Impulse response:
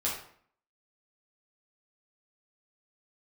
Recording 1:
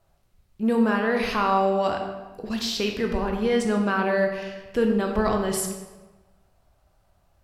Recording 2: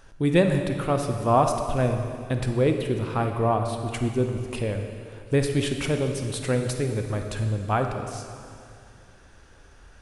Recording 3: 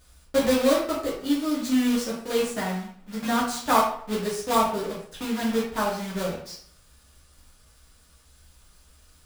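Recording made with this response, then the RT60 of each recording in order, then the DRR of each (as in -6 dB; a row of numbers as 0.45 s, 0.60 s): 3; 1.2 s, 2.4 s, 0.55 s; 2.5 dB, 4.5 dB, -6.5 dB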